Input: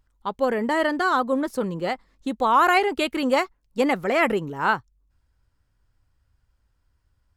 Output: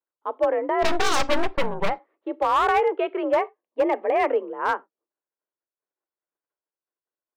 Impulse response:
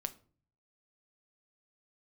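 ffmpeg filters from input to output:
-filter_complex "[0:a]agate=range=0.0224:threshold=0.00178:ratio=3:detection=peak,tiltshelf=f=1400:g=9,highpass=f=330:t=q:w=0.5412,highpass=f=330:t=q:w=1.307,lowpass=f=2900:t=q:w=0.5176,lowpass=f=2900:t=q:w=0.7071,lowpass=f=2900:t=q:w=1.932,afreqshift=52,asplit=3[s0][s1][s2];[s0]afade=t=out:st=0.82:d=0.02[s3];[s1]aeval=exprs='0.447*(cos(1*acos(clip(val(0)/0.447,-1,1)))-cos(1*PI/2))+0.141*(cos(8*acos(clip(val(0)/0.447,-1,1)))-cos(8*PI/2))':c=same,afade=t=in:st=0.82:d=0.02,afade=t=out:st=1.88:d=0.02[s4];[s2]afade=t=in:st=1.88:d=0.02[s5];[s3][s4][s5]amix=inputs=3:normalize=0,asettb=1/sr,asplit=3[s6][s7][s8];[s6]atrim=end=3.384[s9];[s7]atrim=start=3.38:end=4.24,asetpts=PTS-STARTPTS,afade=t=in:d=0.004:c=qsin,afade=t=out:st=0.856:d=0.004:c=qsin,asuperstop=centerf=1400:order=4:qfactor=5.2[s10];[s8]atrim=start=4.236[s11];[s9][s10]acrossfade=d=0.004:c1=hsin:c2=qsin[s12];[s12][s11]acrossfade=d=0.004:c1=qsin:c2=hsin,asplit=2[s13][s14];[1:a]atrim=start_sample=2205,atrim=end_sample=4410,highshelf=f=4000:g=12[s15];[s14][s15]afir=irnorm=-1:irlink=0,volume=0.501[s16];[s13][s16]amix=inputs=2:normalize=0,asoftclip=type=hard:threshold=0.473,volume=0.422"

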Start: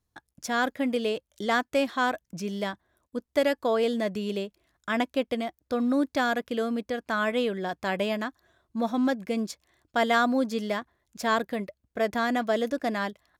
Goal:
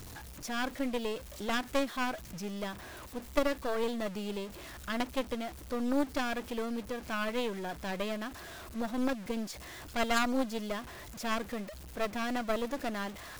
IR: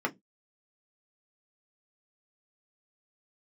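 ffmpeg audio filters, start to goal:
-af "aeval=exprs='val(0)+0.5*0.0266*sgn(val(0))':c=same,acrusher=bits=6:mix=0:aa=0.5,aeval=exprs='0.299*(cos(1*acos(clip(val(0)/0.299,-1,1)))-cos(1*PI/2))+0.0531*(cos(3*acos(clip(val(0)/0.299,-1,1)))-cos(3*PI/2))+0.106*(cos(4*acos(clip(val(0)/0.299,-1,1)))-cos(4*PI/2))+0.0422*(cos(6*acos(clip(val(0)/0.299,-1,1)))-cos(6*PI/2))+0.00422*(cos(8*acos(clip(val(0)/0.299,-1,1)))-cos(8*PI/2))':c=same,volume=0.668"

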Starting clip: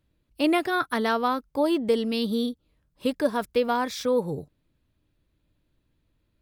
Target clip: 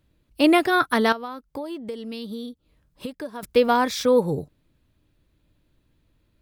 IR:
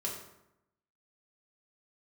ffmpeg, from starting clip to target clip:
-filter_complex "[0:a]asettb=1/sr,asplit=3[s0][s1][s2];[s0]atrim=end=1.124[s3];[s1]atrim=start=1.12:end=3.43,asetpts=PTS-STARTPTS,afade=t=in:d=0.004:c=qsin,afade=t=out:st=2.306:d=0.004:c=qsin,acompressor=threshold=0.0141:ratio=6[s4];[s2]atrim=start=3.426[s5];[s3][s4]acrossfade=d=0.004:c1=hsin:c2=qsin[s6];[s6][s5]acrossfade=d=0.004:c1=qsin:c2=hsin,volume=1.88"

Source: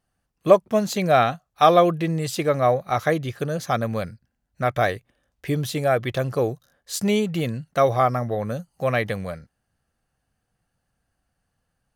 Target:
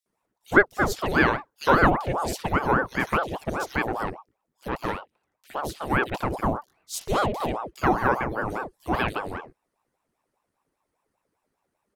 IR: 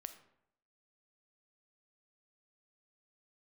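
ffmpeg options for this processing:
-filter_complex "[0:a]acrossover=split=3200[s0][s1];[s0]adelay=60[s2];[s2][s1]amix=inputs=2:normalize=0,asettb=1/sr,asplit=3[s3][s4][s5];[s3]atrim=end=4.684[s6];[s4]atrim=start=4.68:end=5.9,asetpts=PTS-STARTPTS,afade=t=in:d=0.004:c=qsin,afade=t=out:st=1.216:d=0.004:c=qsin,aeval=exprs='(tanh(3.98*val(0)+0.75)-tanh(0.75))/3.98':c=same[s7];[s5]atrim=start=5.896[s8];[s6][s7]acrossfade=d=0.004:c1=hsin:c2=qsin[s9];[s9][s8]acrossfade=d=0.004:c1=qsin:c2=hsin,aeval=exprs='val(0)*sin(2*PI*610*n/s+610*0.7/5*sin(2*PI*5*n/s))':c=same"

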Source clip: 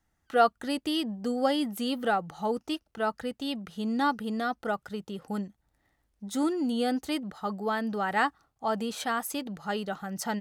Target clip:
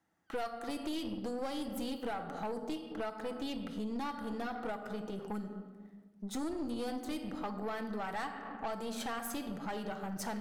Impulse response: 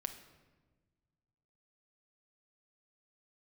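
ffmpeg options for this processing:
-filter_complex "[1:a]atrim=start_sample=2205[s0];[0:a][s0]afir=irnorm=-1:irlink=0,acrossover=split=4200[s1][s2];[s1]acompressor=threshold=0.0141:ratio=6[s3];[s3][s2]amix=inputs=2:normalize=0,highpass=180,highshelf=f=2300:g=-8.5,aeval=exprs='(tanh(79.4*val(0)+0.5)-tanh(0.5))/79.4':c=same,volume=2"

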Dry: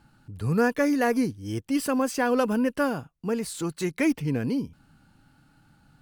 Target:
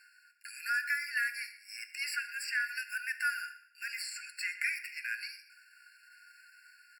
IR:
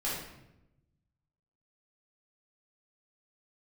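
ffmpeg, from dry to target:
-filter_complex "[0:a]acrossover=split=580|1200|4400[s0][s1][s2][s3];[s0]acompressor=threshold=0.02:ratio=4[s4];[s1]acompressor=threshold=0.0178:ratio=4[s5];[s2]acompressor=threshold=0.01:ratio=4[s6];[s3]acompressor=threshold=0.00316:ratio=4[s7];[s4][s5][s6][s7]amix=inputs=4:normalize=0,atempo=0.86,areverse,acompressor=mode=upward:threshold=0.00398:ratio=2.5,areverse,aecho=1:1:124|248|372:0.119|0.0357|0.0107,asplit=2[s8][s9];[1:a]atrim=start_sample=2205[s10];[s9][s10]afir=irnorm=-1:irlink=0,volume=0.224[s11];[s8][s11]amix=inputs=2:normalize=0,afftfilt=real='re*eq(mod(floor(b*sr/1024/1400),2),1)':imag='im*eq(mod(floor(b*sr/1024/1400),2),1)':win_size=1024:overlap=0.75,volume=1.88"

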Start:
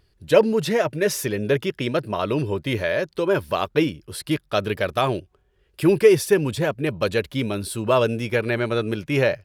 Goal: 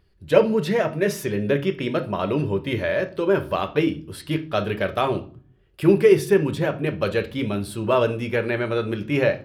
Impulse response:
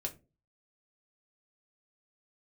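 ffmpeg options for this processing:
-filter_complex "[0:a]asplit=2[s0][s1];[1:a]atrim=start_sample=2205,asetrate=22491,aresample=44100,lowpass=4100[s2];[s1][s2]afir=irnorm=-1:irlink=0,volume=0.668[s3];[s0][s3]amix=inputs=2:normalize=0,volume=0.501"

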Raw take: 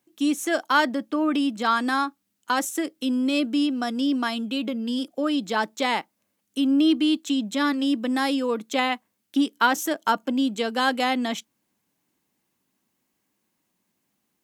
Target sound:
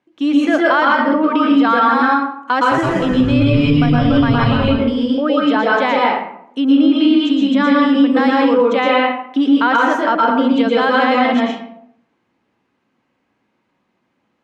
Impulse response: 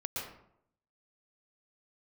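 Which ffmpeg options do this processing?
-filter_complex "[0:a]lowpass=2500,lowshelf=f=190:g=-7,asettb=1/sr,asplit=3[s0][s1][s2];[s0]atrim=end=2.544[s3];[s1]atrim=start=2.54:end=4.65,asetpts=PTS-STARTPTS,afade=t=in:d=0.004:c=qsin,afade=t=out:st=2.106:d=0.004:c=qsin,asplit=7[s4][s5][s6][s7][s8][s9][s10];[s5]adelay=169,afreqshift=-140,volume=0.596[s11];[s6]adelay=338,afreqshift=-280,volume=0.299[s12];[s7]adelay=507,afreqshift=-420,volume=0.15[s13];[s8]adelay=676,afreqshift=-560,volume=0.0741[s14];[s9]adelay=845,afreqshift=-700,volume=0.0372[s15];[s10]adelay=1014,afreqshift=-840,volume=0.0186[s16];[s4][s11][s12][s13][s14][s15][s16]amix=inputs=7:normalize=0,atrim=end_sample=93051[s17];[s2]atrim=start=4.646[s18];[s3][s17]acrossfade=d=0.004:c1=hsin:c2=qsin[s19];[s19][s18]acrossfade=d=0.004:c1=qsin:c2=hsin[s20];[1:a]atrim=start_sample=2205[s21];[s20][s21]afir=irnorm=-1:irlink=0,alimiter=level_in=5.01:limit=0.891:release=50:level=0:latency=1,volume=0.668"

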